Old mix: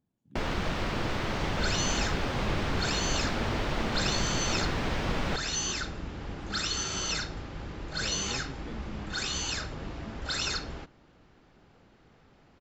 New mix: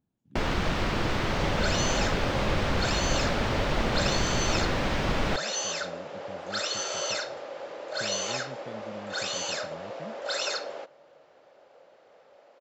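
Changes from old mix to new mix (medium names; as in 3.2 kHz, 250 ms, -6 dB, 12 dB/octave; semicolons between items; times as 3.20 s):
first sound +3.5 dB; second sound: add resonant high-pass 560 Hz, resonance Q 6.2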